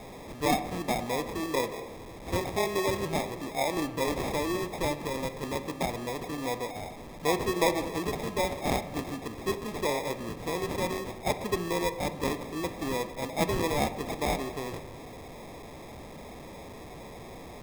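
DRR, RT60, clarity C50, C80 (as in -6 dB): 10.5 dB, 1.3 s, 12.5 dB, 14.0 dB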